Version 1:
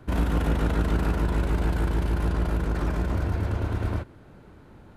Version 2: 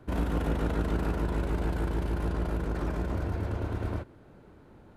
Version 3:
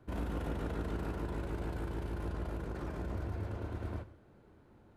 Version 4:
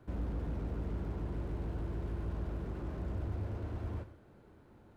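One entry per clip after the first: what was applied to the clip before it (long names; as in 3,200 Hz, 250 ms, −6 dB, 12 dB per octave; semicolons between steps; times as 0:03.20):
parametric band 450 Hz +4 dB 2.1 octaves; level −6 dB
reverb whose tail is shaped and stops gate 230 ms falling, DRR 11 dB; level −8 dB
slew-rate limiting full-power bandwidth 2.7 Hz; level +1.5 dB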